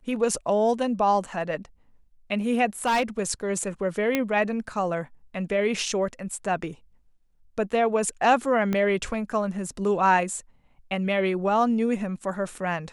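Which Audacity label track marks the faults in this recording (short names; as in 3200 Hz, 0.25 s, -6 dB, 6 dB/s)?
2.860000	3.200000	clipped -18.5 dBFS
4.150000	4.150000	pop -9 dBFS
8.730000	8.730000	pop -14 dBFS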